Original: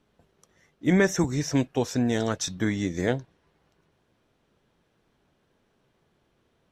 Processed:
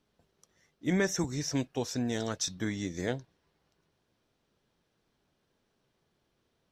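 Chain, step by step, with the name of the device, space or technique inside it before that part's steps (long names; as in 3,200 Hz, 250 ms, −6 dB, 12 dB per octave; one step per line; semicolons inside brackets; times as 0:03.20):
presence and air boost (parametric band 4,900 Hz +6 dB 0.97 octaves; high-shelf EQ 9,700 Hz +5 dB)
level −7.5 dB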